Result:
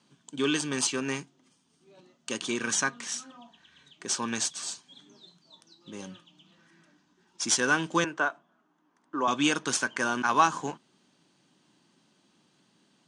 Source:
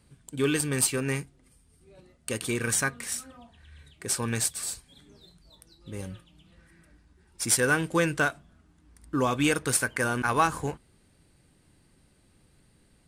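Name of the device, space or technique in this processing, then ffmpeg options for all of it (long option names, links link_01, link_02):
television speaker: -filter_complex "[0:a]highpass=frequency=180:width=0.5412,highpass=frequency=180:width=1.3066,equalizer=frequency=480:width_type=q:width=4:gain=-7,equalizer=frequency=990:width_type=q:width=4:gain=5,equalizer=frequency=2100:width_type=q:width=4:gain=-5,equalizer=frequency=3200:width_type=q:width=4:gain=6,equalizer=frequency=6300:width_type=q:width=4:gain=8,lowpass=frequency=7000:width=0.5412,lowpass=frequency=7000:width=1.3066,asettb=1/sr,asplit=3[link_01][link_02][link_03];[link_01]atrim=end=8.044[link_04];[link_02]atrim=start=8.04:end=9.28,asetpts=PTS-STARTPTS,afade=type=in:duration=0.004:curve=qsin,afade=type=out:start_time=1.236:duration=0.004:curve=qsin,acrossover=split=320 2000:gain=0.224 1 0.178[link_05][link_06][link_07];[link_05][link_06][link_07]amix=inputs=3:normalize=0[link_08];[link_03]atrim=start=9.276[link_09];[link_04][link_08]acrossfade=duration=0.004:curve1=hsin:curve2=qsin[link_10];[link_10][link_09]acrossfade=duration=0.004:curve1=qsin:curve2=hsin"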